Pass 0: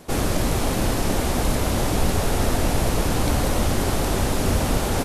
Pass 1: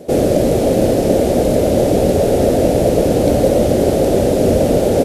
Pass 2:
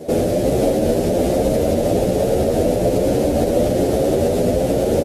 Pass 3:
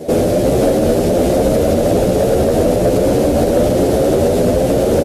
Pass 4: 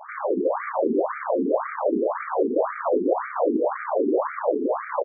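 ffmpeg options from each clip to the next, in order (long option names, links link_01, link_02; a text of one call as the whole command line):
ffmpeg -i in.wav -af "highpass=frequency=190:poles=1,lowshelf=frequency=770:width_type=q:width=3:gain=10.5" out.wav
ffmpeg -i in.wav -filter_complex "[0:a]alimiter=limit=-11dB:level=0:latency=1:release=185,asplit=2[link_01][link_02];[link_02]adelay=10.4,afreqshift=1.2[link_03];[link_01][link_03]amix=inputs=2:normalize=1,volume=5.5dB" out.wav
ffmpeg -i in.wav -af "acontrast=84,volume=-2dB" out.wav
ffmpeg -i in.wav -af "aecho=1:1:201.2|242:0.316|0.282,aeval=exprs='max(val(0),0)':channel_layout=same,afftfilt=real='re*between(b*sr/1024,300*pow(1700/300,0.5+0.5*sin(2*PI*1.9*pts/sr))/1.41,300*pow(1700/300,0.5+0.5*sin(2*PI*1.9*pts/sr))*1.41)':imag='im*between(b*sr/1024,300*pow(1700/300,0.5+0.5*sin(2*PI*1.9*pts/sr))/1.41,300*pow(1700/300,0.5+0.5*sin(2*PI*1.9*pts/sr))*1.41)':win_size=1024:overlap=0.75" out.wav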